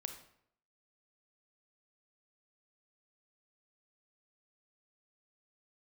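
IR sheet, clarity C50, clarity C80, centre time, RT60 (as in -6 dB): 8.5 dB, 11.5 dB, 15 ms, 0.70 s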